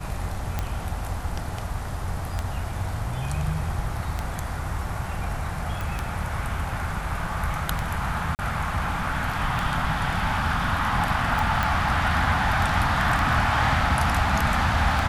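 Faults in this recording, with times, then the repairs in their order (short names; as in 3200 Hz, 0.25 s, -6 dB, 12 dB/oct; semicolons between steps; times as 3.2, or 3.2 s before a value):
tick 33 1/3 rpm -12 dBFS
5.81 pop
8.35–8.39 gap 39 ms
11.63 pop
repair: de-click; interpolate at 8.35, 39 ms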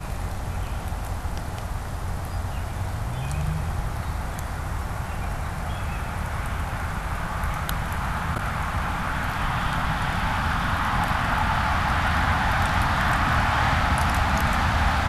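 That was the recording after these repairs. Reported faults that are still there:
none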